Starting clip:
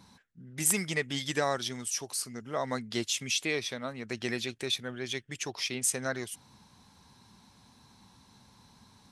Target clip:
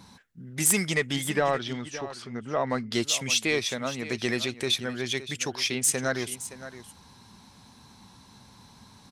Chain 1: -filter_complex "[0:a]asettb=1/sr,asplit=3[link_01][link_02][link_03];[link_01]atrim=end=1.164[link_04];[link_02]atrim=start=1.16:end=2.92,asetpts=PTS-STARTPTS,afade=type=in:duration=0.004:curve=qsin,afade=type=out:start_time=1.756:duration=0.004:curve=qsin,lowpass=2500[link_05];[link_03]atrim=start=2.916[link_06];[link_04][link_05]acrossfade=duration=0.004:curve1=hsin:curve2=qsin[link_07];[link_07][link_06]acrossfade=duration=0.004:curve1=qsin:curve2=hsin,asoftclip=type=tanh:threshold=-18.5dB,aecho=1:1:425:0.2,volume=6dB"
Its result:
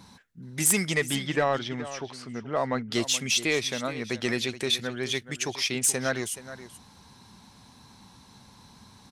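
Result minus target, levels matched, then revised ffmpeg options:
echo 143 ms early
-filter_complex "[0:a]asettb=1/sr,asplit=3[link_01][link_02][link_03];[link_01]atrim=end=1.164[link_04];[link_02]atrim=start=1.16:end=2.92,asetpts=PTS-STARTPTS,afade=type=in:duration=0.004:curve=qsin,afade=type=out:start_time=1.756:duration=0.004:curve=qsin,lowpass=2500[link_05];[link_03]atrim=start=2.916[link_06];[link_04][link_05]acrossfade=duration=0.004:curve1=hsin:curve2=qsin[link_07];[link_07][link_06]acrossfade=duration=0.004:curve1=qsin:curve2=hsin,asoftclip=type=tanh:threshold=-18.5dB,aecho=1:1:568:0.2,volume=6dB"

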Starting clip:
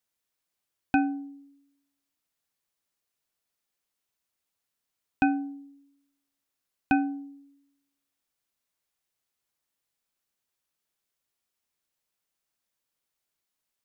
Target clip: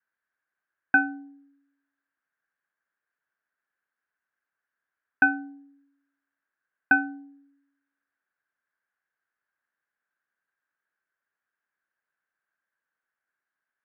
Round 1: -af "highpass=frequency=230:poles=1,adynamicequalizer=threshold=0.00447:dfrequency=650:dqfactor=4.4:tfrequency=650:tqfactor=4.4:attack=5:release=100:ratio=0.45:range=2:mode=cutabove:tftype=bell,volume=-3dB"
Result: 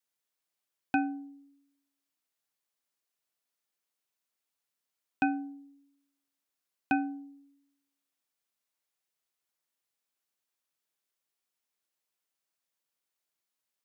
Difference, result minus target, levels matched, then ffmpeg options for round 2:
2,000 Hz band −7.0 dB
-af "highpass=frequency=230:poles=1,adynamicequalizer=threshold=0.00447:dfrequency=650:dqfactor=4.4:tfrequency=650:tqfactor=4.4:attack=5:release=100:ratio=0.45:range=2:mode=cutabove:tftype=bell,lowpass=frequency=1600:width_type=q:width=8.4,volume=-3dB"

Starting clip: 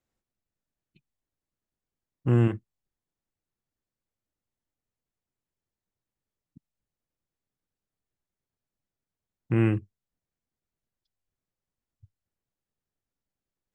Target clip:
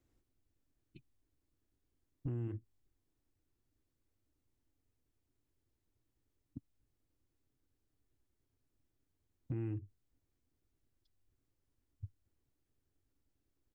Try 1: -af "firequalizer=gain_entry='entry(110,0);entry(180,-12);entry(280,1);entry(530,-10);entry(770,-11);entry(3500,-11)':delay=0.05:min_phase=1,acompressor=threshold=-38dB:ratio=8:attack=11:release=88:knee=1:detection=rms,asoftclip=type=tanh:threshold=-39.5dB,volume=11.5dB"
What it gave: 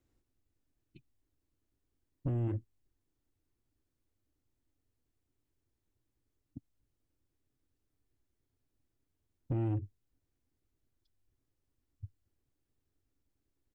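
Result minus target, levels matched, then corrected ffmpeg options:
downward compressor: peak gain reduction −9.5 dB
-af "firequalizer=gain_entry='entry(110,0);entry(180,-12);entry(280,1);entry(530,-10);entry(770,-11);entry(3500,-11)':delay=0.05:min_phase=1,acompressor=threshold=-49dB:ratio=8:attack=11:release=88:knee=1:detection=rms,asoftclip=type=tanh:threshold=-39.5dB,volume=11.5dB"

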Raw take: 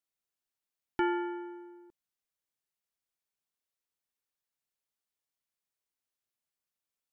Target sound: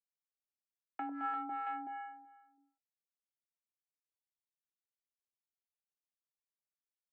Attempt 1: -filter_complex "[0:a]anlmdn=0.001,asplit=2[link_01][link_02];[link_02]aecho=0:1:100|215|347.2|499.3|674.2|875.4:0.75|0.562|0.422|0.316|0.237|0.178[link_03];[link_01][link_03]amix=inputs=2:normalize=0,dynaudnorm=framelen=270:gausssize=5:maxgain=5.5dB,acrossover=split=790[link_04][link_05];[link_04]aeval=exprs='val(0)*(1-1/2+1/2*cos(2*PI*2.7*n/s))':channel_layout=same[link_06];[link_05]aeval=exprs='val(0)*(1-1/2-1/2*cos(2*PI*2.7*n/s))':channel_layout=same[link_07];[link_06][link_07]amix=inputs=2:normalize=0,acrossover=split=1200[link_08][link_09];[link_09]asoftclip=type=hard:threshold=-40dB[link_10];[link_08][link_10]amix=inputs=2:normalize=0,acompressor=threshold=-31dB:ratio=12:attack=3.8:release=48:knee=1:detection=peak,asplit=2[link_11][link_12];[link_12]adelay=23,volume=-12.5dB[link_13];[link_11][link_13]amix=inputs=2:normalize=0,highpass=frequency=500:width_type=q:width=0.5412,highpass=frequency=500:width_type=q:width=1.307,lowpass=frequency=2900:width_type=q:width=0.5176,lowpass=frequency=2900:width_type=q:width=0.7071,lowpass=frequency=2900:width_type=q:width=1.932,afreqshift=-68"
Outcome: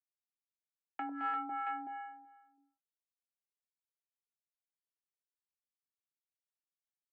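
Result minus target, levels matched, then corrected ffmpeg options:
hard clipping: distortion −4 dB
-filter_complex "[0:a]anlmdn=0.001,asplit=2[link_01][link_02];[link_02]aecho=0:1:100|215|347.2|499.3|674.2|875.4:0.75|0.562|0.422|0.316|0.237|0.178[link_03];[link_01][link_03]amix=inputs=2:normalize=0,dynaudnorm=framelen=270:gausssize=5:maxgain=5.5dB,acrossover=split=790[link_04][link_05];[link_04]aeval=exprs='val(0)*(1-1/2+1/2*cos(2*PI*2.7*n/s))':channel_layout=same[link_06];[link_05]aeval=exprs='val(0)*(1-1/2-1/2*cos(2*PI*2.7*n/s))':channel_layout=same[link_07];[link_06][link_07]amix=inputs=2:normalize=0,acrossover=split=1200[link_08][link_09];[link_09]asoftclip=type=hard:threshold=-46.5dB[link_10];[link_08][link_10]amix=inputs=2:normalize=0,acompressor=threshold=-31dB:ratio=12:attack=3.8:release=48:knee=1:detection=peak,asplit=2[link_11][link_12];[link_12]adelay=23,volume=-12.5dB[link_13];[link_11][link_13]amix=inputs=2:normalize=0,highpass=frequency=500:width_type=q:width=0.5412,highpass=frequency=500:width_type=q:width=1.307,lowpass=frequency=2900:width_type=q:width=0.5176,lowpass=frequency=2900:width_type=q:width=0.7071,lowpass=frequency=2900:width_type=q:width=1.932,afreqshift=-68"

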